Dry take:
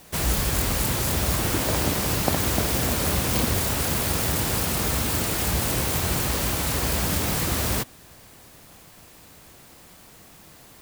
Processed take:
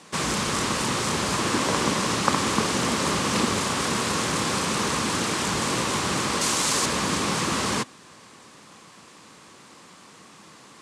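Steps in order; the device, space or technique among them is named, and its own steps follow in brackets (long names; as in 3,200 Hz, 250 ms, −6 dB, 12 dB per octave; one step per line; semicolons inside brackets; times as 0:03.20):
0:06.41–0:06.86: bass and treble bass −4 dB, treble +8 dB
full-range speaker at full volume (highs frequency-modulated by the lows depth 0.71 ms; loudspeaker in its box 180–8,700 Hz, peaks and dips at 210 Hz +3 dB, 680 Hz −6 dB, 1,100 Hz +7 dB)
level +2.5 dB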